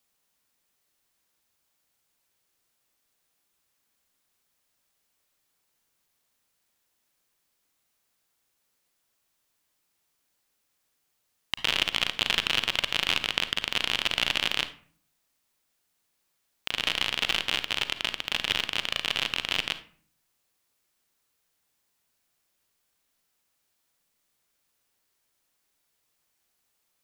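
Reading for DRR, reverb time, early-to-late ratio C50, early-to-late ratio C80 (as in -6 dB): 11.0 dB, 0.50 s, 12.5 dB, 18.0 dB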